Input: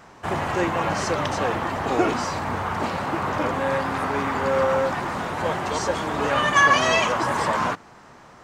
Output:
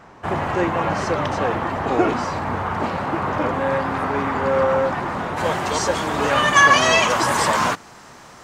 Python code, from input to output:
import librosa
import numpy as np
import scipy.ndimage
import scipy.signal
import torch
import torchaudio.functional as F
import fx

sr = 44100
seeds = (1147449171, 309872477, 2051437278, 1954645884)

y = fx.high_shelf(x, sr, hz=3600.0, db=fx.steps((0.0, -9.5), (5.36, 4.5), (7.09, 11.0)))
y = y * librosa.db_to_amplitude(3.0)